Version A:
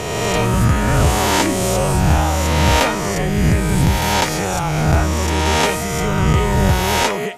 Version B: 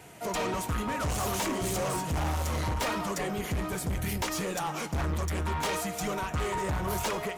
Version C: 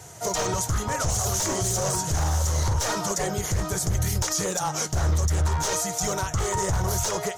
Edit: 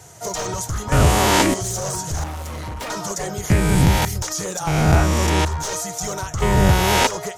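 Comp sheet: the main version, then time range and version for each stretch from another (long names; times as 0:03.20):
C
0:00.92–0:01.54: punch in from A
0:02.24–0:02.90: punch in from B
0:03.50–0:04.05: punch in from A
0:04.67–0:05.45: punch in from A
0:06.42–0:07.07: punch in from A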